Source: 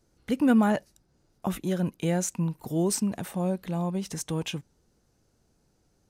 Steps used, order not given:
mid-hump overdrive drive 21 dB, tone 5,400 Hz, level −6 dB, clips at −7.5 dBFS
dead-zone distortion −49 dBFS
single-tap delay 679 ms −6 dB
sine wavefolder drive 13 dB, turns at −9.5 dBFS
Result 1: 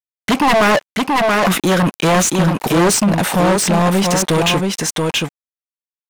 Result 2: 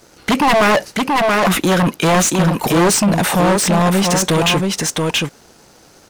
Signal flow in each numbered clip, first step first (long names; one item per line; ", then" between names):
dead-zone distortion, then sine wavefolder, then single-tap delay, then mid-hump overdrive
sine wavefolder, then single-tap delay, then mid-hump overdrive, then dead-zone distortion